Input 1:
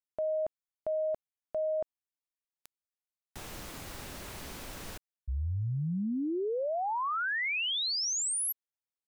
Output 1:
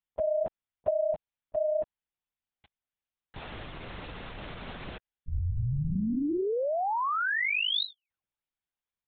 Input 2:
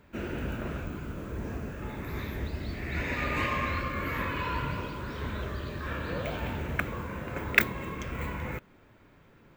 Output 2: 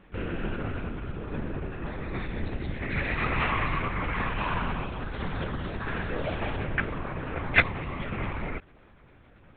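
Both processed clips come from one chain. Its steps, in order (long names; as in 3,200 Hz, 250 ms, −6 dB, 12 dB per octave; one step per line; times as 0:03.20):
linear-prediction vocoder at 8 kHz whisper
level +3 dB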